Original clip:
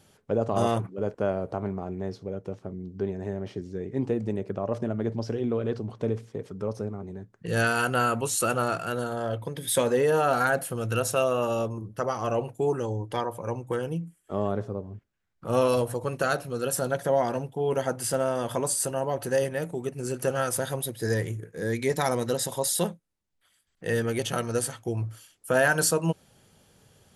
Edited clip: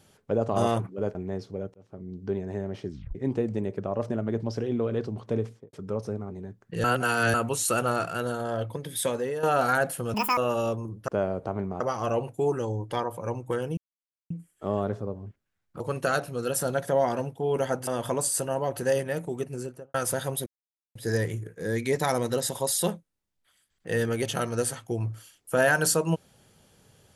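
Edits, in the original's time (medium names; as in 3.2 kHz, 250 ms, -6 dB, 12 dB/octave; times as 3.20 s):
1.15–1.87 s: move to 12.01 s
2.46–2.88 s: fade in
3.62 s: tape stop 0.25 s
6.17–6.45 s: studio fade out
7.56–8.06 s: reverse
9.43–10.15 s: fade out linear, to -11 dB
10.86–11.30 s: speed 189%
13.98 s: insert silence 0.53 s
15.48–15.97 s: delete
18.04–18.33 s: delete
19.89–20.40 s: studio fade out
20.92 s: insert silence 0.49 s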